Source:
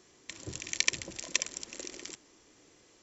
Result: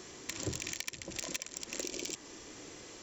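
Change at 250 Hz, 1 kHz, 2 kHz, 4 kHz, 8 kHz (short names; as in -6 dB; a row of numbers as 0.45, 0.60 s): +4.0 dB, 0.0 dB, -7.0 dB, -5.5 dB, n/a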